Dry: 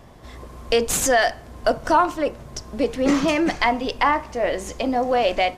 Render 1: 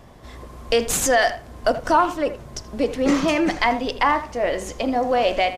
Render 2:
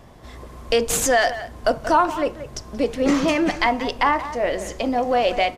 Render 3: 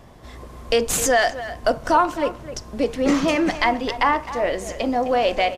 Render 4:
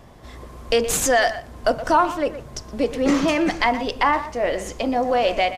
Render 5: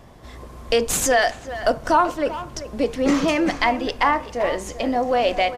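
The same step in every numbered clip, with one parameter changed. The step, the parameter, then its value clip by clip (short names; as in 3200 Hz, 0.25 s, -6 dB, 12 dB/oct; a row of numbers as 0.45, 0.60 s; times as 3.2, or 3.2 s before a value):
speakerphone echo, time: 80, 180, 260, 120, 390 ms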